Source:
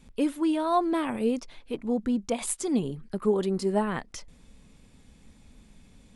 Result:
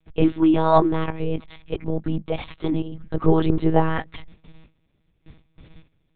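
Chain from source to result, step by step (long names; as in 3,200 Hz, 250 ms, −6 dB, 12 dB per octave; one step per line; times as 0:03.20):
noise gate with hold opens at −42 dBFS
0:00.87–0:03.01: output level in coarse steps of 10 dB
one-pitch LPC vocoder at 8 kHz 160 Hz
level +8.5 dB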